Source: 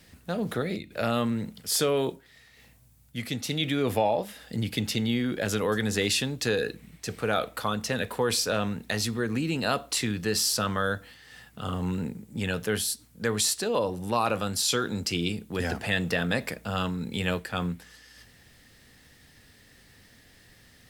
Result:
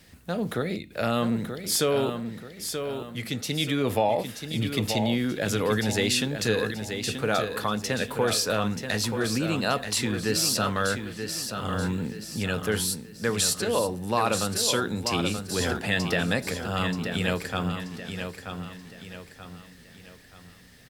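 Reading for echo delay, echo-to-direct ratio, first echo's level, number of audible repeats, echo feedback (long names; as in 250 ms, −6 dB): 931 ms, −6.5 dB, −7.5 dB, 4, 40%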